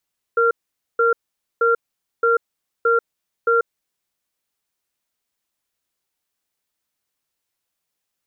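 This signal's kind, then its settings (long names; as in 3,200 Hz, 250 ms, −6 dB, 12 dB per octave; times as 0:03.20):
tone pair in a cadence 465 Hz, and 1,380 Hz, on 0.14 s, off 0.48 s, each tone −16 dBFS 3.50 s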